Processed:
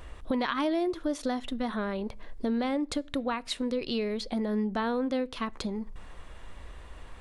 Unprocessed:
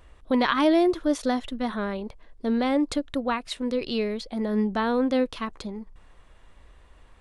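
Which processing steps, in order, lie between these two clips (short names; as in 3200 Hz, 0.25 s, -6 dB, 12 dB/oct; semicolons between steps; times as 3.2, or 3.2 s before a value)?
compressor 3:1, threshold -39 dBFS, peak gain reduction 16.5 dB; on a send: reverb RT60 0.55 s, pre-delay 4 ms, DRR 22 dB; on the sum: gain +7.5 dB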